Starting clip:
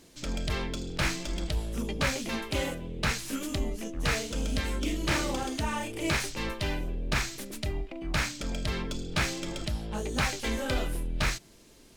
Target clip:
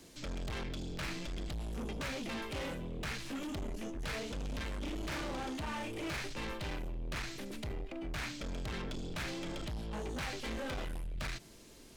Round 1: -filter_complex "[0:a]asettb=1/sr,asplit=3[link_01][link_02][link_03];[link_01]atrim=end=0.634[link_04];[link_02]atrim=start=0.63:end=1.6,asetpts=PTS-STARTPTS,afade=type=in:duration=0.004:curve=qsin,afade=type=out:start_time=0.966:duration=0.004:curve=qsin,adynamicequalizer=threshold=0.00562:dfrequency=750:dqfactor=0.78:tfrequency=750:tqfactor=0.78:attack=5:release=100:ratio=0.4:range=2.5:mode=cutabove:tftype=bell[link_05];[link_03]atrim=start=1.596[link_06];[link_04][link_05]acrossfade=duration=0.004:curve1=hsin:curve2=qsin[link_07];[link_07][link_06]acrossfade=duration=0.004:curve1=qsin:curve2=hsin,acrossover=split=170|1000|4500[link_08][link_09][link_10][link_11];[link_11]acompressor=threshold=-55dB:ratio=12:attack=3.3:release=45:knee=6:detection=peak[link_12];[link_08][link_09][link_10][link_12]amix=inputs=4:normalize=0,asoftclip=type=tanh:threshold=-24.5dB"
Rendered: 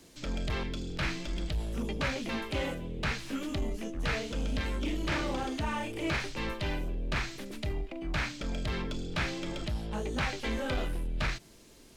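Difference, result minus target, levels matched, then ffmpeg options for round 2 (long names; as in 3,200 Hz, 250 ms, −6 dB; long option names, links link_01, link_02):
soft clipping: distortion −9 dB
-filter_complex "[0:a]asettb=1/sr,asplit=3[link_01][link_02][link_03];[link_01]atrim=end=0.634[link_04];[link_02]atrim=start=0.63:end=1.6,asetpts=PTS-STARTPTS,afade=type=in:duration=0.004:curve=qsin,afade=type=out:start_time=0.966:duration=0.004:curve=qsin,adynamicequalizer=threshold=0.00562:dfrequency=750:dqfactor=0.78:tfrequency=750:tqfactor=0.78:attack=5:release=100:ratio=0.4:range=2.5:mode=cutabove:tftype=bell[link_05];[link_03]atrim=start=1.596[link_06];[link_04][link_05]acrossfade=duration=0.004:curve1=hsin:curve2=qsin[link_07];[link_07][link_06]acrossfade=duration=0.004:curve1=qsin:curve2=hsin,acrossover=split=170|1000|4500[link_08][link_09][link_10][link_11];[link_11]acompressor=threshold=-55dB:ratio=12:attack=3.3:release=45:knee=6:detection=peak[link_12];[link_08][link_09][link_10][link_12]amix=inputs=4:normalize=0,asoftclip=type=tanh:threshold=-36.5dB"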